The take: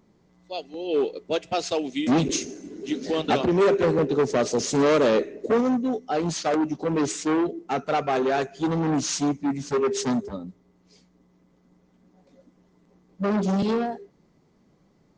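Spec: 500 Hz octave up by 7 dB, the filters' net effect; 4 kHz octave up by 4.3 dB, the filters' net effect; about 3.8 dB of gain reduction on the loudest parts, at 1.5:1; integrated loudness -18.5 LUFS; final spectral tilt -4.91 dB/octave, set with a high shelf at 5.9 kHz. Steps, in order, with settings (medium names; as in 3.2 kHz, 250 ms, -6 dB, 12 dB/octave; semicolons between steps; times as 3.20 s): peaking EQ 500 Hz +8.5 dB; peaking EQ 4 kHz +6.5 dB; treble shelf 5.9 kHz -3 dB; compression 1.5:1, threshold -20 dBFS; trim +3.5 dB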